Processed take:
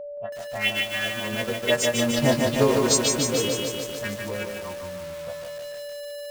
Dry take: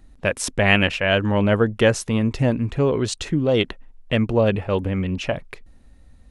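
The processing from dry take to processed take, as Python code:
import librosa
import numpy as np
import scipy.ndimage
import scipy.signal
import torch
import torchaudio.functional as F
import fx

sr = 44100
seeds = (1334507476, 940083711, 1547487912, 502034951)

p1 = fx.freq_snap(x, sr, grid_st=2)
p2 = fx.doppler_pass(p1, sr, speed_mps=27, closest_m=10.0, pass_at_s=2.51)
p3 = fx.env_lowpass(p2, sr, base_hz=380.0, full_db=-22.5)
p4 = fx.env_phaser(p3, sr, low_hz=280.0, high_hz=3700.0, full_db=-19.0)
p5 = fx.low_shelf(p4, sr, hz=330.0, db=-8.5)
p6 = fx.transient(p5, sr, attack_db=4, sustain_db=-7)
p7 = p6 + 10.0 ** (-39.0 / 20.0) * np.sin(2.0 * np.pi * 580.0 * np.arange(len(p6)) / sr)
p8 = (np.mod(10.0 ** (28.0 / 20.0) * p7 + 1.0, 2.0) - 1.0) / 10.0 ** (28.0 / 20.0)
p9 = p7 + (p8 * librosa.db_to_amplitude(-10.5))
p10 = fx.low_shelf(p9, sr, hz=100.0, db=-4.0)
p11 = p10 + fx.echo_feedback(p10, sr, ms=174, feedback_pct=21, wet_db=-11, dry=0)
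p12 = fx.echo_crushed(p11, sr, ms=149, feedback_pct=80, bits=7, wet_db=-3.5)
y = p12 * librosa.db_to_amplitude(3.5)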